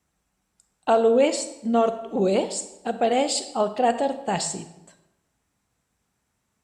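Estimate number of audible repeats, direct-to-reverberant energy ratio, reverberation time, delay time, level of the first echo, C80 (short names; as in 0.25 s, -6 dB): none, 10.0 dB, 0.95 s, none, none, 13.5 dB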